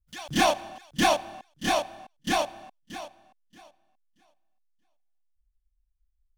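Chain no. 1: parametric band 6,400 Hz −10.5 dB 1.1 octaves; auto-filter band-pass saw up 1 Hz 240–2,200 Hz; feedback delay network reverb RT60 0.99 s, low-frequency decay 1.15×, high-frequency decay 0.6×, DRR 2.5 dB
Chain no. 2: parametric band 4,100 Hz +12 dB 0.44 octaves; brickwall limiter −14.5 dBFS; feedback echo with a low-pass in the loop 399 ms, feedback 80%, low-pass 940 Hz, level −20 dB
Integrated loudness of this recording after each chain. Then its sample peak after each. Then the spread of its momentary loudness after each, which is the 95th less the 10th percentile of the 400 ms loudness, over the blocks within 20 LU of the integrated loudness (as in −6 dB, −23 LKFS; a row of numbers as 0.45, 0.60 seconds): −32.0, −29.0 LKFS; −11.5, −14.5 dBFS; 19, 14 LU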